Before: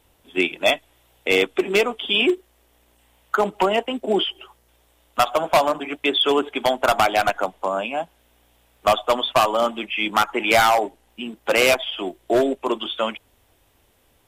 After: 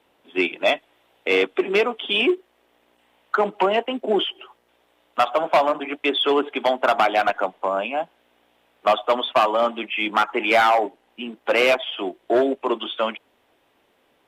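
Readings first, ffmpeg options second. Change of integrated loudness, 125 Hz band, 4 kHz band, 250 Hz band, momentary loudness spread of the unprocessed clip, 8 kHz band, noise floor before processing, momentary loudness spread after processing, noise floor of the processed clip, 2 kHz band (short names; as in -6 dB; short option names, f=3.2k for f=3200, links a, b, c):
-0.5 dB, n/a, -2.5 dB, -0.5 dB, 11 LU, under -10 dB, -61 dBFS, 10 LU, -64 dBFS, -1.0 dB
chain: -filter_complex "[0:a]acontrast=89,acrossover=split=180 3800:gain=0.0794 1 0.2[a][b][c];[a][b][c]amix=inputs=3:normalize=0,volume=-6dB"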